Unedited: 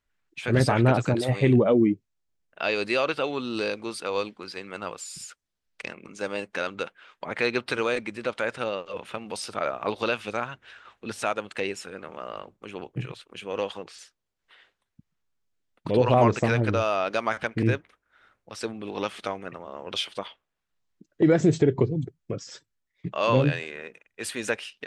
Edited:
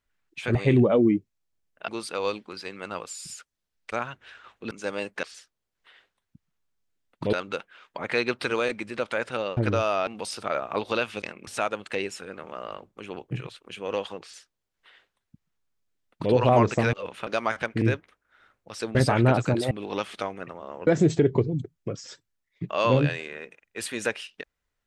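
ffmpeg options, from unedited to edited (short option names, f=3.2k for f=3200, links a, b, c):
-filter_complex "[0:a]asplit=16[a][b][c][d][e][f][g][h][i][j][k][l][m][n][o][p];[a]atrim=end=0.552[q];[b]atrim=start=1.308:end=2.642[r];[c]atrim=start=3.788:end=5.832[s];[d]atrim=start=10.328:end=11.122[t];[e]atrim=start=6.078:end=6.602[u];[f]atrim=start=13.868:end=15.972[v];[g]atrim=start=6.598:end=8.842[w];[h]atrim=start=16.578:end=17.082[x];[i]atrim=start=9.178:end=10.332[y];[j]atrim=start=5.828:end=6.082[z];[k]atrim=start=11.118:end=16.582[aa];[l]atrim=start=8.838:end=9.182[ab];[m]atrim=start=17.078:end=18.762[ac];[n]atrim=start=0.548:end=1.312[ad];[o]atrim=start=18.758:end=19.922[ae];[p]atrim=start=21.298[af];[q][r]acrossfade=d=0.004:c1=hsin:c2=hsin[ag];[ag][s]acrossfade=d=0.004:c1=hsin:c2=hsin[ah];[ah][t]acrossfade=d=0.004:c1=hsin:c2=hsin[ai];[ai][u]acrossfade=d=0.004:c1=hsin:c2=hsin[aj];[aj][v]acrossfade=d=0.004:c1=hsin:c2=hsin[ak];[ak][w]acrossfade=d=0.004:c1=hsin:c2=hsin[al];[al][x]acrossfade=d=0.004:c1=hsin:c2=hsin[am];[am][y]acrossfade=d=0.004:c1=hsin:c2=hsin[an];[an][z]acrossfade=d=0.004:c1=hsin:c2=hsin[ao];[ao][aa]acrossfade=d=0.004:c1=hsin:c2=hsin[ap];[ap][ab]acrossfade=d=0.004:c1=hsin:c2=hsin[aq];[aq][ac]acrossfade=d=0.004:c1=hsin:c2=hsin[ar];[ar][ad]acrossfade=d=0.004:c1=hsin:c2=hsin[as];[as][ae]acrossfade=d=0.004:c1=hsin:c2=hsin[at];[at][af]acrossfade=d=0.004:c1=hsin:c2=hsin"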